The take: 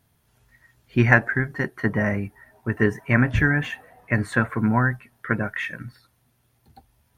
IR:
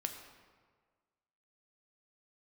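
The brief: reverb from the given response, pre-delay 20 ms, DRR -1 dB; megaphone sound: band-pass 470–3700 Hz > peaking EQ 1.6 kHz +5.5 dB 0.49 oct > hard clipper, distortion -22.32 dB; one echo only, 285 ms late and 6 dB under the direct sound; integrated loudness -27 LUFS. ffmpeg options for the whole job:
-filter_complex "[0:a]aecho=1:1:285:0.501,asplit=2[s0][s1];[1:a]atrim=start_sample=2205,adelay=20[s2];[s1][s2]afir=irnorm=-1:irlink=0,volume=1.12[s3];[s0][s3]amix=inputs=2:normalize=0,highpass=470,lowpass=3700,equalizer=f=1600:t=o:w=0.49:g=5.5,asoftclip=type=hard:threshold=0.668,volume=0.376"

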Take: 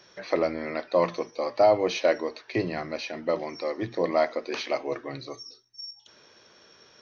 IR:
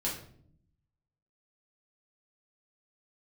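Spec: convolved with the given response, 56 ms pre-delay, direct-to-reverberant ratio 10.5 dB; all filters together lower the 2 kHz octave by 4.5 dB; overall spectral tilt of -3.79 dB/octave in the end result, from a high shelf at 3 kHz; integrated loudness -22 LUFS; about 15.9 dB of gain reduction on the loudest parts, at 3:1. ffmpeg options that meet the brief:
-filter_complex "[0:a]equalizer=f=2000:t=o:g=-8.5,highshelf=f=3000:g=8,acompressor=threshold=0.0126:ratio=3,asplit=2[s0][s1];[1:a]atrim=start_sample=2205,adelay=56[s2];[s1][s2]afir=irnorm=-1:irlink=0,volume=0.178[s3];[s0][s3]amix=inputs=2:normalize=0,volume=7.08"

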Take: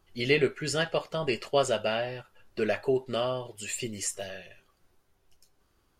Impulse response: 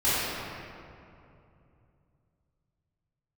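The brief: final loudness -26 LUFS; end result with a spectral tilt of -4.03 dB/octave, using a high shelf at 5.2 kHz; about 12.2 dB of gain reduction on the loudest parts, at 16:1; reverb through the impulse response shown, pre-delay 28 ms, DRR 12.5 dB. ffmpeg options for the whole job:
-filter_complex "[0:a]highshelf=f=5200:g=-8,acompressor=threshold=0.0282:ratio=16,asplit=2[s0][s1];[1:a]atrim=start_sample=2205,adelay=28[s2];[s1][s2]afir=irnorm=-1:irlink=0,volume=0.0398[s3];[s0][s3]amix=inputs=2:normalize=0,volume=3.55"

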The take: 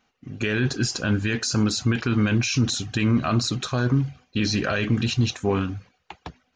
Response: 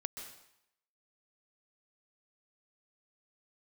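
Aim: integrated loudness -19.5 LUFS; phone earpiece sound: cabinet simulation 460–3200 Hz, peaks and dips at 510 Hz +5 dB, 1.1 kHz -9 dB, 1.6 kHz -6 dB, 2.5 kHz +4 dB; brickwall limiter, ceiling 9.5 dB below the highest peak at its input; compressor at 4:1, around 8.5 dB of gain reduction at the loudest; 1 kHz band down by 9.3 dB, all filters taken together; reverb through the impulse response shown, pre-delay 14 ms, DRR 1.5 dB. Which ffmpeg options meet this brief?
-filter_complex "[0:a]equalizer=f=1000:t=o:g=-8,acompressor=threshold=0.0447:ratio=4,alimiter=level_in=1.26:limit=0.0631:level=0:latency=1,volume=0.794,asplit=2[s0][s1];[1:a]atrim=start_sample=2205,adelay=14[s2];[s1][s2]afir=irnorm=-1:irlink=0,volume=0.944[s3];[s0][s3]amix=inputs=2:normalize=0,highpass=460,equalizer=f=510:t=q:w=4:g=5,equalizer=f=1100:t=q:w=4:g=-9,equalizer=f=1600:t=q:w=4:g=-6,equalizer=f=2500:t=q:w=4:g=4,lowpass=f=3200:w=0.5412,lowpass=f=3200:w=1.3066,volume=10"

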